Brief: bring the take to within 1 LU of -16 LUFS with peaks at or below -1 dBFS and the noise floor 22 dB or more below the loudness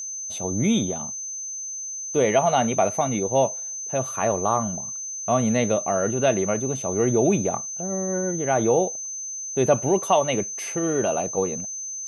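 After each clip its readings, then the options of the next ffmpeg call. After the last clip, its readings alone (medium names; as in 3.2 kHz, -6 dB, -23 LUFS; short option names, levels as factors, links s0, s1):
steady tone 6.2 kHz; tone level -30 dBFS; loudness -23.5 LUFS; peak level -6.5 dBFS; loudness target -16.0 LUFS
-> -af "bandreject=f=6200:w=30"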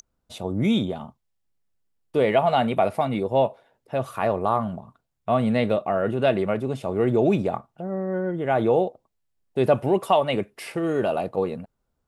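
steady tone not found; loudness -24.0 LUFS; peak level -7.5 dBFS; loudness target -16.0 LUFS
-> -af "volume=2.51,alimiter=limit=0.891:level=0:latency=1"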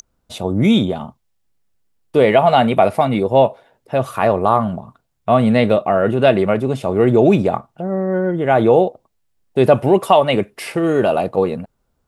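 loudness -16.0 LUFS; peak level -1.0 dBFS; noise floor -68 dBFS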